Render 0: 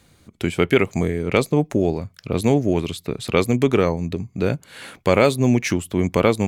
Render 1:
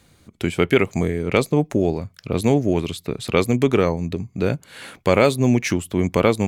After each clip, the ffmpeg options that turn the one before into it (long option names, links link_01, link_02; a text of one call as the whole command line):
ffmpeg -i in.wav -af anull out.wav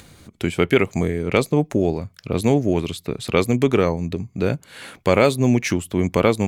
ffmpeg -i in.wav -af "acompressor=mode=upward:threshold=-38dB:ratio=2.5" out.wav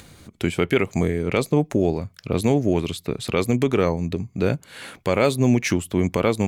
ffmpeg -i in.wav -af "alimiter=limit=-8dB:level=0:latency=1:release=114" out.wav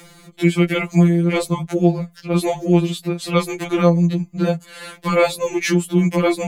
ffmpeg -i in.wav -af "afftfilt=real='re*2.83*eq(mod(b,8),0)':imag='im*2.83*eq(mod(b,8),0)':win_size=2048:overlap=0.75,volume=5.5dB" out.wav